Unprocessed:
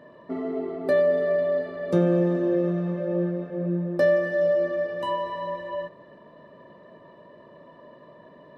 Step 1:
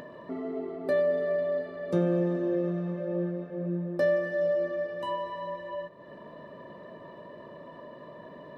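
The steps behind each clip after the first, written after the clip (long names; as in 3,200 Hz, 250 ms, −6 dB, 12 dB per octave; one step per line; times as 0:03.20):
upward compression, threshold −31 dBFS
level −5 dB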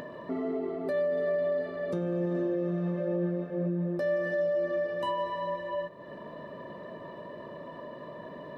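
brickwall limiter −26 dBFS, peak gain reduction 11 dB
level +3 dB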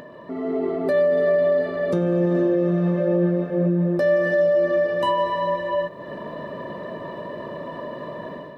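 automatic gain control gain up to 10 dB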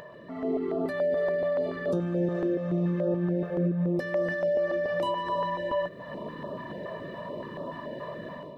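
brickwall limiter −16.5 dBFS, peak gain reduction 3.5 dB
notch on a step sequencer 7 Hz 270–2,100 Hz
level −2.5 dB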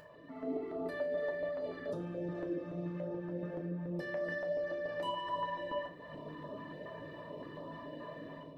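flanger 1.3 Hz, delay 0.4 ms, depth 4.7 ms, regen +71%
feedback delay network reverb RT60 0.44 s, low-frequency decay 1.55×, high-frequency decay 0.9×, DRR 2 dB
level −6.5 dB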